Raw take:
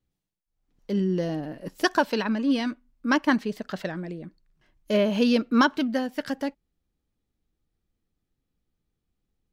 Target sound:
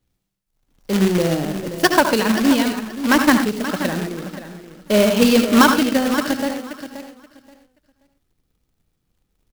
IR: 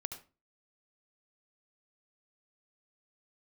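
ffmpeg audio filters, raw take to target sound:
-filter_complex "[0:a]aecho=1:1:528|1056|1584:0.251|0.0502|0.01[s0];[1:a]atrim=start_sample=2205,afade=t=out:st=0.2:d=0.01,atrim=end_sample=9261[s1];[s0][s1]afir=irnorm=-1:irlink=0,acrusher=bits=2:mode=log:mix=0:aa=0.000001,volume=2.82"

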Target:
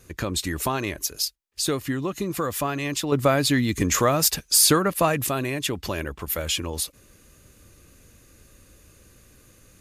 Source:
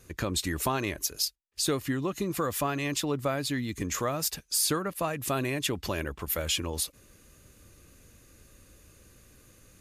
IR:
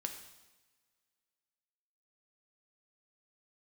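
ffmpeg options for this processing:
-filter_complex "[0:a]asettb=1/sr,asplit=3[s0][s1][s2];[s0]atrim=end=3.124[s3];[s1]atrim=start=3.12:end=5.27,asetpts=PTS-STARTPTS,afade=t=in:d=0.004:c=qsin,afade=t=out:st=2.146:d=0.004:c=qsin,acontrast=77[s4];[s2]atrim=start=5.266[s5];[s3][s4]acrossfade=d=0.004:c1=hsin:c2=qsin[s6];[s6][s5]acrossfade=d=0.004:c1=qsin:c2=hsin,volume=1.41"

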